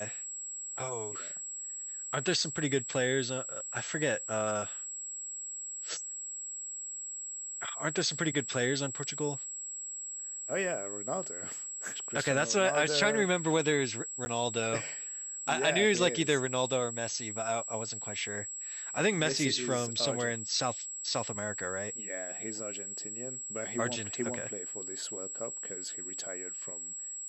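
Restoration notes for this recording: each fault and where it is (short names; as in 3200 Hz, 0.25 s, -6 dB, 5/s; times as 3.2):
tone 7700 Hz -38 dBFS
14.25–14.26 gap 10 ms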